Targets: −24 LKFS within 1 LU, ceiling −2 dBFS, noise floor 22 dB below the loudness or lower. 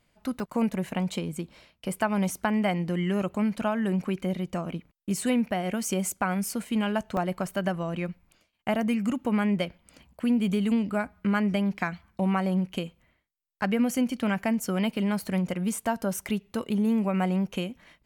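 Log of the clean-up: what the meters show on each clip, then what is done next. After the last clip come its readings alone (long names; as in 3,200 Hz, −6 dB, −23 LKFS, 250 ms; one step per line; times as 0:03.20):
number of dropouts 3; longest dropout 1.1 ms; integrated loudness −28.0 LKFS; sample peak −12.5 dBFS; target loudness −24.0 LKFS
→ repair the gap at 0:00.40/0:07.17/0:16.55, 1.1 ms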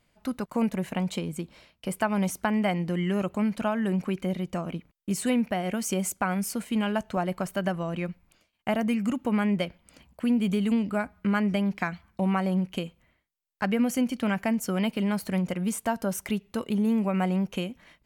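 number of dropouts 0; integrated loudness −28.0 LKFS; sample peak −12.5 dBFS; target loudness −24.0 LKFS
→ level +4 dB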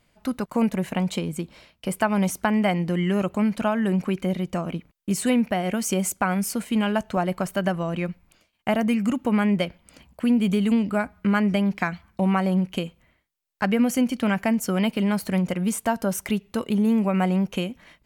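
integrated loudness −24.0 LKFS; sample peak −8.5 dBFS; background noise floor −67 dBFS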